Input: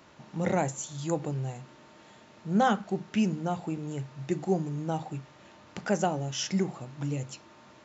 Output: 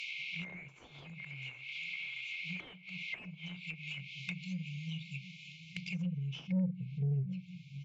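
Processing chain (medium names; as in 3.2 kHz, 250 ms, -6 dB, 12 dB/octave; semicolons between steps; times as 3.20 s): bass shelf 210 Hz -5.5 dB; on a send: feedback delay 737 ms, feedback 46%, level -20.5 dB; on the sum: band-pass sweep 1.8 kHz -> 210 Hz, 3.26–7.11 s; FFT band-reject 190–2100 Hz; in parallel at -3 dB: compression, threshold -58 dBFS, peak gain reduction 16 dB; on the sum: overdrive pedal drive 24 dB, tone 5.6 kHz, clips at -32 dBFS; bass shelf 68 Hz -6 dB; low-pass that closes with the level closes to 720 Hz, closed at -41 dBFS; trim +10 dB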